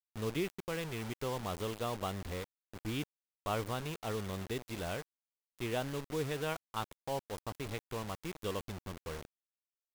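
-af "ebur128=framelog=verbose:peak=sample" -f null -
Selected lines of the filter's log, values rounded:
Integrated loudness:
  I:         -39.5 LUFS
  Threshold: -49.6 LUFS
Loudness range:
  LRA:         1.8 LU
  Threshold: -59.7 LUFS
  LRA low:   -40.8 LUFS
  LRA high:  -39.0 LUFS
Sample peak:
  Peak:      -23.8 dBFS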